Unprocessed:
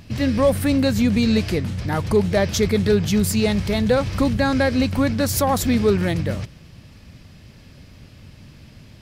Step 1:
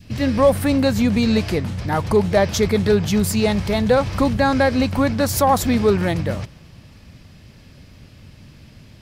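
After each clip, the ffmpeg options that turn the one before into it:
-af "adynamicequalizer=threshold=0.02:dfrequency=870:dqfactor=1.1:tfrequency=870:tqfactor=1.1:attack=5:release=100:ratio=0.375:range=3:mode=boostabove:tftype=bell"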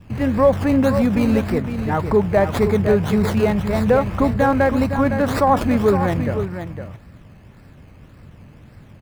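-filter_complex "[0:a]aecho=1:1:510:0.376,acrossover=split=2600[a][b];[b]acrusher=samples=19:mix=1:aa=0.000001:lfo=1:lforange=11.4:lforate=1.8[c];[a][c]amix=inputs=2:normalize=0"

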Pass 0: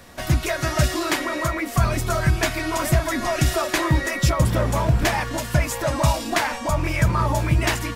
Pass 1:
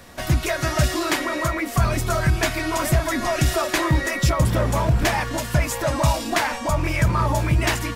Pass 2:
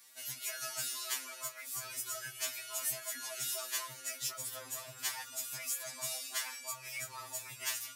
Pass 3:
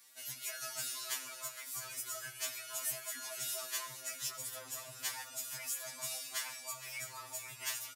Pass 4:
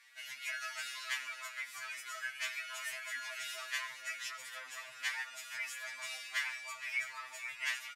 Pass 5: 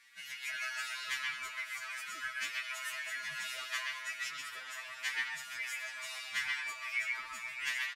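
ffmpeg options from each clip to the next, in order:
-af "acontrast=63,volume=-5.5dB"
-af "aderivative,afftfilt=real='re*2.45*eq(mod(b,6),0)':imag='im*2.45*eq(mod(b,6),0)':win_size=2048:overlap=0.75,volume=-4.5dB"
-af "aecho=1:1:92|464|707:0.126|0.211|0.126,volume=-2dB"
-af "bandpass=f=2k:t=q:w=2.4:csg=0,volume=11dB"
-filter_complex "[0:a]acrossover=split=660|5400[a][b][c];[a]acrusher=samples=31:mix=1:aa=0.000001:lfo=1:lforange=49.6:lforate=0.97[d];[b]aecho=1:1:128.3|212.8:0.891|0.316[e];[d][e][c]amix=inputs=3:normalize=0"

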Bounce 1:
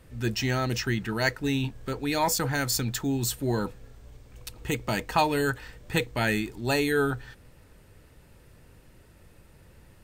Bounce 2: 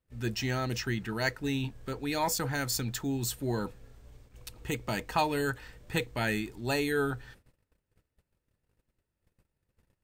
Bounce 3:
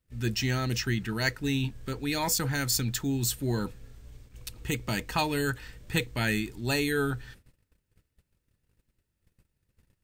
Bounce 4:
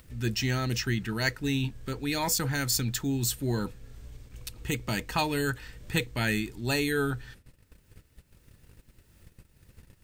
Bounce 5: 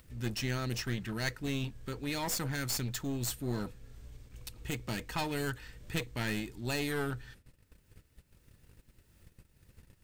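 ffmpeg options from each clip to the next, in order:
-af "agate=range=-25dB:threshold=-49dB:ratio=16:detection=peak,volume=-4.5dB"
-af "equalizer=f=720:t=o:w=2:g=-7.5,volume=5dB"
-af "acompressor=mode=upward:threshold=-38dB:ratio=2.5"
-af "aeval=exprs='clip(val(0),-1,0.0237)':c=same,volume=-4.5dB"

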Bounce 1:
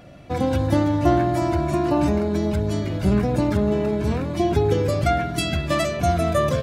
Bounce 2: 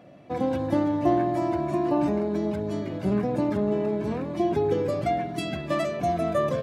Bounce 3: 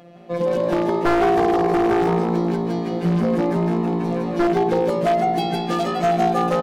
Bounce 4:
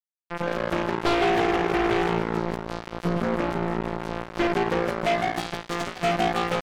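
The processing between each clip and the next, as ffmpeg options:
-af "highpass=180,highshelf=f=2.5k:g=-11,bandreject=f=1.4k:w=13,volume=-2.5dB"
-filter_complex "[0:a]afftfilt=real='hypot(re,im)*cos(PI*b)':imag='0':win_size=1024:overlap=0.75,asplit=7[a][b][c][d][e][f][g];[b]adelay=160,afreqshift=56,volume=-3.5dB[h];[c]adelay=320,afreqshift=112,volume=-10.4dB[i];[d]adelay=480,afreqshift=168,volume=-17.4dB[j];[e]adelay=640,afreqshift=224,volume=-24.3dB[k];[f]adelay=800,afreqshift=280,volume=-31.2dB[l];[g]adelay=960,afreqshift=336,volume=-38.2dB[m];[a][h][i][j][k][l][m]amix=inputs=7:normalize=0,aeval=exprs='0.106*(abs(mod(val(0)/0.106+3,4)-2)-1)':c=same,volume=8dB"
-af "acrusher=bits=2:mix=0:aa=0.5,volume=-6dB"

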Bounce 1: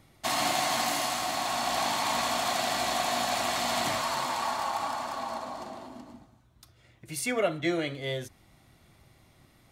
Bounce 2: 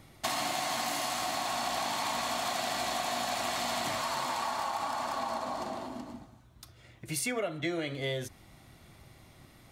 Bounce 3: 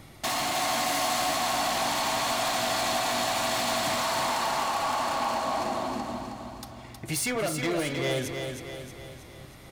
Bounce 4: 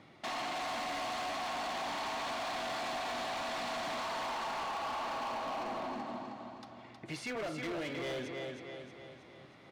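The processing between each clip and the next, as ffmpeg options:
-af "acompressor=threshold=-34dB:ratio=6,volume=4dB"
-af "asoftclip=type=hard:threshold=-32dB,aecho=1:1:316|632|948|1264|1580|1896:0.501|0.261|0.136|0.0705|0.0366|0.0191,volume=6.5dB"
-af "highpass=180,lowpass=3.5k,asoftclip=type=hard:threshold=-29dB,volume=-6dB"

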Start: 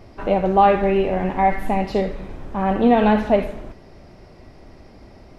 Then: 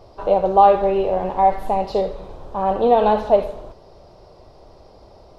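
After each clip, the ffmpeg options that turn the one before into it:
-af "equalizer=f=250:t=o:w=1:g=-8,equalizer=f=500:t=o:w=1:g=8,equalizer=f=1k:t=o:w=1:g=7,equalizer=f=2k:t=o:w=1:g=-11,equalizer=f=4k:t=o:w=1:g=7,volume=-3.5dB"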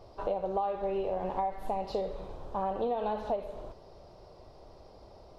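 -af "acompressor=threshold=-22dB:ratio=8,volume=-6.5dB"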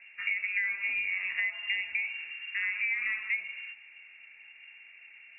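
-af "lowpass=f=2.4k:t=q:w=0.5098,lowpass=f=2.4k:t=q:w=0.6013,lowpass=f=2.4k:t=q:w=0.9,lowpass=f=2.4k:t=q:w=2.563,afreqshift=-2800"

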